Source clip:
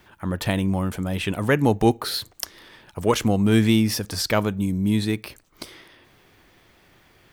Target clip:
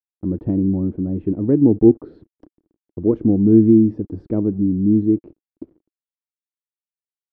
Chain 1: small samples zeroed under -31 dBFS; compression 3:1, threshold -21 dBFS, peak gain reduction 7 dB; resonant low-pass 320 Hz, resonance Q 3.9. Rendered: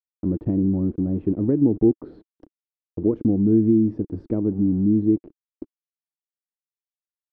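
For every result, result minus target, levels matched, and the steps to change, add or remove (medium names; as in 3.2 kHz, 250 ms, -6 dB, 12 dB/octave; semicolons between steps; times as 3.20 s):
compression: peak gain reduction +7 dB; small samples zeroed: distortion +8 dB
remove: compression 3:1, threshold -21 dBFS, peak gain reduction 7 dB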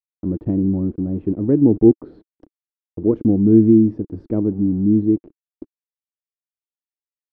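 small samples zeroed: distortion +8 dB
change: small samples zeroed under -38 dBFS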